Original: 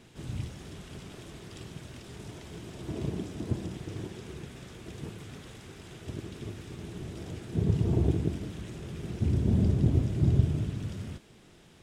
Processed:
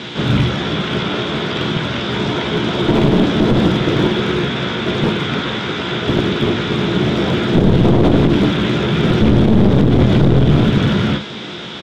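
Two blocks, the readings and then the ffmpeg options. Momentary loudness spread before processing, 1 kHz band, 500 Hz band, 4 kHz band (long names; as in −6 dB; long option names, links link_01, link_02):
19 LU, +28.0 dB, +22.5 dB, +29.0 dB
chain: -filter_complex "[0:a]highpass=140,equalizer=frequency=200:width_type=q:width=4:gain=4,equalizer=frequency=520:width_type=q:width=4:gain=3,equalizer=frequency=960:width_type=q:width=4:gain=4,equalizer=frequency=1400:width_type=q:width=4:gain=8,equalizer=frequency=2200:width_type=q:width=4:gain=4,equalizer=frequency=3500:width_type=q:width=4:gain=10,lowpass=frequency=5800:width=0.5412,lowpass=frequency=5800:width=1.3066,aecho=1:1:17|50:0.266|0.282,acrossover=split=2600[link_01][link_02];[link_02]acompressor=threshold=-57dB:ratio=4:attack=1:release=60[link_03];[link_01][link_03]amix=inputs=2:normalize=0,equalizer=frequency=3400:width_type=o:width=0.55:gain=3,asplit=2[link_04][link_05];[link_05]adelay=14,volume=-9dB[link_06];[link_04][link_06]amix=inputs=2:normalize=0,aeval=exprs='clip(val(0),-1,0.0168)':channel_layout=same,alimiter=level_in=25.5dB:limit=-1dB:release=50:level=0:latency=1,volume=-1dB"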